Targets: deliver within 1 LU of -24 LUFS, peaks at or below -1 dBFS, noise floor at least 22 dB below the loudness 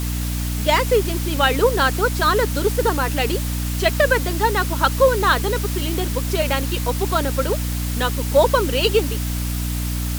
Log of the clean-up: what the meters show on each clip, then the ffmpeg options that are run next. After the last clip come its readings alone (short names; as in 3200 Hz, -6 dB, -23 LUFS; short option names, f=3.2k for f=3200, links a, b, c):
hum 60 Hz; harmonics up to 300 Hz; hum level -21 dBFS; noise floor -24 dBFS; noise floor target -42 dBFS; loudness -19.5 LUFS; peak -2.5 dBFS; loudness target -24.0 LUFS
-> -af "bandreject=f=60:t=h:w=6,bandreject=f=120:t=h:w=6,bandreject=f=180:t=h:w=6,bandreject=f=240:t=h:w=6,bandreject=f=300:t=h:w=6"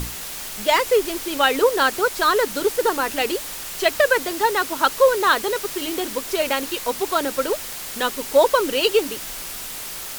hum none; noise floor -33 dBFS; noise floor target -43 dBFS
-> -af "afftdn=nr=10:nf=-33"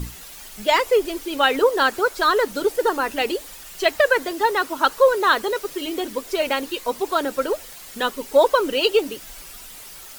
noise floor -40 dBFS; noise floor target -43 dBFS
-> -af "afftdn=nr=6:nf=-40"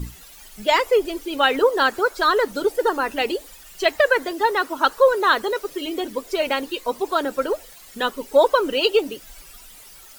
noise floor -45 dBFS; loudness -21.0 LUFS; peak -4.0 dBFS; loudness target -24.0 LUFS
-> -af "volume=-3dB"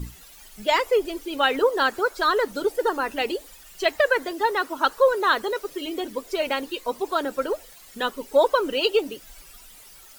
loudness -24.0 LUFS; peak -7.0 dBFS; noise floor -48 dBFS